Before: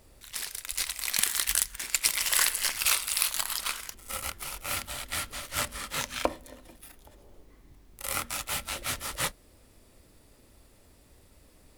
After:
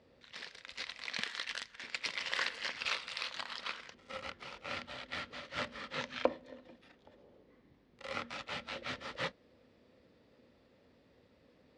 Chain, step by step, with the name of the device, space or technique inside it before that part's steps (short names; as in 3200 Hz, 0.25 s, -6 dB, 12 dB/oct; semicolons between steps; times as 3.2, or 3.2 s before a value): guitar cabinet (speaker cabinet 110–4500 Hz, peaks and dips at 170 Hz +3 dB, 240 Hz +6 dB, 500 Hz +9 dB, 1800 Hz +3 dB); 1.24–1.84 low shelf 440 Hz -6.5 dB; gain -7 dB